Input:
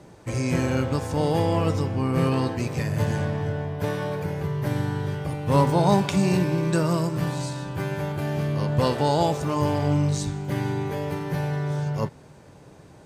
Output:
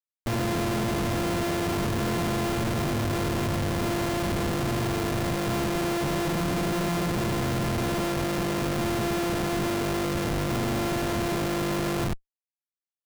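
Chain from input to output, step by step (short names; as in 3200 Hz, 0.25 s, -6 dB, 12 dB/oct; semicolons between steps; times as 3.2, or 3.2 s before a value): sample sorter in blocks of 128 samples; Bessel low-pass 4700 Hz; notches 50/100/150/200/250/300/350 Hz; in parallel at +1 dB: compressor, threshold -29 dBFS, peak gain reduction 13.5 dB; on the sum: Schmitt trigger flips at -31 dBFS; gain -4 dB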